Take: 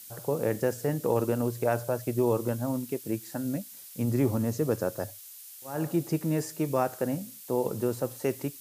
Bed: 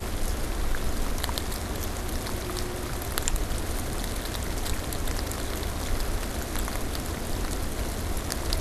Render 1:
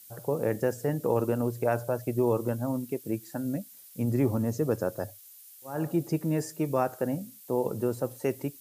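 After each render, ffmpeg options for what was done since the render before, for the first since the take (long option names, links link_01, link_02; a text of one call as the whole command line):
ffmpeg -i in.wav -af "afftdn=noise_reduction=7:noise_floor=-47" out.wav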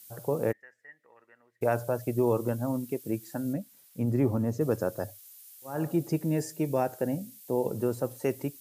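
ffmpeg -i in.wav -filter_complex "[0:a]asplit=3[link_01][link_02][link_03];[link_01]afade=type=out:start_time=0.51:duration=0.02[link_04];[link_02]bandpass=frequency=1900:width_type=q:width=15,afade=type=in:start_time=0.51:duration=0.02,afade=type=out:start_time=1.61:duration=0.02[link_05];[link_03]afade=type=in:start_time=1.61:duration=0.02[link_06];[link_04][link_05][link_06]amix=inputs=3:normalize=0,asettb=1/sr,asplit=3[link_07][link_08][link_09];[link_07]atrim=end=3.534[link_10];[link_08]atrim=start=3.53:end=4.61,asetpts=PTS-STARTPTS,afade=type=in:duration=0.004:curve=qsin,afade=type=out:start_time=1.076:duration=0.004:curve=qsin,highshelf=frequency=3100:gain=-7.5[link_11];[link_09]atrim=start=4.606[link_12];[link_10][link_11]acrossfade=duration=0.004:curve1=hsin:curve2=qsin[link_13];[link_13][link_12]acrossfade=duration=0.004:curve1=qsin:curve2=hsin,asettb=1/sr,asplit=3[link_14][link_15][link_16];[link_14]atrim=end=6.214[link_17];[link_15]atrim=start=6.21:end=7.75,asetpts=PTS-STARTPTS,afade=type=in:duration=0.004:curve=qsin,afade=type=out:start_time=1.536:duration=0.004:curve=qsin,equalizer=frequency=1200:width=3.7:gain=-9.5[link_18];[link_16]atrim=start=7.746[link_19];[link_17][link_18]acrossfade=duration=0.004:curve1=hsin:curve2=qsin[link_20];[link_20][link_19]acrossfade=duration=0.004:curve1=qsin:curve2=hsin" out.wav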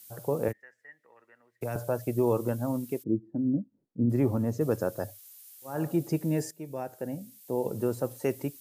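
ffmpeg -i in.wav -filter_complex "[0:a]asettb=1/sr,asplit=3[link_01][link_02][link_03];[link_01]atrim=end=0.484[link_04];[link_02]atrim=start=0.48:end=1.76,asetpts=PTS-STARTPTS,afade=type=in:duration=0.004:curve=qsin,afade=type=out:start_time=1.276:duration=0.004:curve=qsin,acrossover=split=190|3000[link_05][link_06][link_07];[link_06]acompressor=threshold=-32dB:ratio=6:attack=3.2:release=140:knee=2.83:detection=peak[link_08];[link_05][link_08][link_07]amix=inputs=3:normalize=0[link_09];[link_03]atrim=start=1.756[link_10];[link_04][link_09]acrossfade=duration=0.004:curve1=hsin:curve2=qsin[link_11];[link_11][link_10]acrossfade=duration=0.004:curve1=qsin:curve2=hsin,asplit=3[link_12][link_13][link_14];[link_12]afade=type=out:start_time=3.02:duration=0.02[link_15];[link_13]lowpass=frequency=310:width_type=q:width=1.8,afade=type=in:start_time=3.02:duration=0.02,afade=type=out:start_time=4.09:duration=0.02[link_16];[link_14]afade=type=in:start_time=4.09:duration=0.02[link_17];[link_15][link_16][link_17]amix=inputs=3:normalize=0,asplit=2[link_18][link_19];[link_18]atrim=end=6.51,asetpts=PTS-STARTPTS,afade=type=out:start_time=6.506:duration=0.004:curve=hsin:silence=0.211349[link_20];[link_19]atrim=start=6.51,asetpts=PTS-STARTPTS,afade=type=in:duration=1.38:silence=0.211349[link_21];[link_20][link_21]concat=n=2:v=0:a=1" out.wav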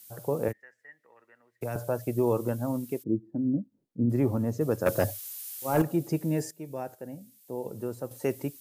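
ffmpeg -i in.wav -filter_complex "[0:a]asettb=1/sr,asplit=3[link_01][link_02][link_03];[link_01]atrim=end=4.864[link_04];[link_02]atrim=start=4.86:end=5.82,asetpts=PTS-STARTPTS,afade=type=in:duration=0.004:curve=qsin,afade=type=out:start_time=0.956:duration=0.004:curve=qsin,aeval=exprs='0.158*sin(PI/2*2.24*val(0)/0.158)':channel_layout=same[link_05];[link_03]atrim=start=5.816[link_06];[link_04][link_05]acrossfade=duration=0.004:curve1=hsin:curve2=qsin[link_07];[link_07][link_06]acrossfade=duration=0.004:curve1=qsin:curve2=hsin,asplit=3[link_08][link_09][link_10];[link_08]atrim=end=6.952[link_11];[link_09]atrim=start=6.948:end=8.112,asetpts=PTS-STARTPTS,volume=-5.5dB[link_12];[link_10]atrim=start=8.108[link_13];[link_11][link_12]acrossfade=duration=0.004:curve1=hsin:curve2=hsin[link_14];[link_14][link_13]acrossfade=duration=0.004:curve1=hsin:curve2=hsin" out.wav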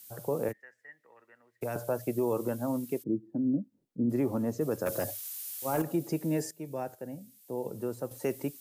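ffmpeg -i in.wav -filter_complex "[0:a]acrossover=split=160|5300[link_01][link_02][link_03];[link_01]acompressor=threshold=-47dB:ratio=6[link_04];[link_02]alimiter=limit=-21dB:level=0:latency=1:release=60[link_05];[link_04][link_05][link_03]amix=inputs=3:normalize=0" out.wav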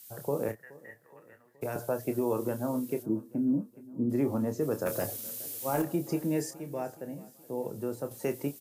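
ffmpeg -i in.wav -filter_complex "[0:a]asplit=2[link_01][link_02];[link_02]adelay=28,volume=-8.5dB[link_03];[link_01][link_03]amix=inputs=2:normalize=0,aecho=1:1:422|844|1266|1688:0.0891|0.0508|0.029|0.0165" out.wav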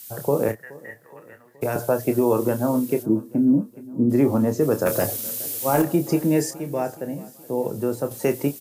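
ffmpeg -i in.wav -af "volume=10dB" out.wav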